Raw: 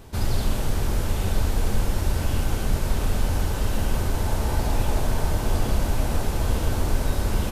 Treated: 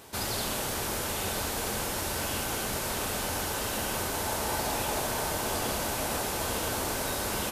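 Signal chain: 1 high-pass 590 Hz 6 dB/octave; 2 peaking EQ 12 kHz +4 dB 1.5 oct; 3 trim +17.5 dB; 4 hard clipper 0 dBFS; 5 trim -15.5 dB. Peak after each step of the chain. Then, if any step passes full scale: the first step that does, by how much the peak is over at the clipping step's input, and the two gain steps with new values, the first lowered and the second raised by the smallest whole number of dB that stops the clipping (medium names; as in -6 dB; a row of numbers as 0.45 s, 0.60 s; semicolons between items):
-20.5 dBFS, -20.0 dBFS, -2.5 dBFS, -2.5 dBFS, -18.0 dBFS; nothing clips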